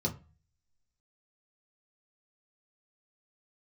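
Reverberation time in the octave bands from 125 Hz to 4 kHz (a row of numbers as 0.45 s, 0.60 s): 0.60 s, 0.40 s, 0.30 s, 0.35 s, 0.30 s, 0.25 s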